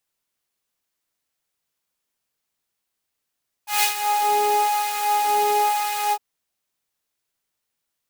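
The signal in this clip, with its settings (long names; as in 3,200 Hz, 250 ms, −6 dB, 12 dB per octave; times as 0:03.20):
subtractive patch with filter wobble G#5, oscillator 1 triangle, interval −12 semitones, oscillator 2 level −9 dB, noise −11 dB, filter highpass, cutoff 450 Hz, Q 0.92, filter envelope 1.5 octaves, filter decay 0.41 s, filter sustain 10%, attack 154 ms, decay 0.11 s, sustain −11.5 dB, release 0.06 s, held 2.45 s, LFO 1 Hz, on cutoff 1.4 octaves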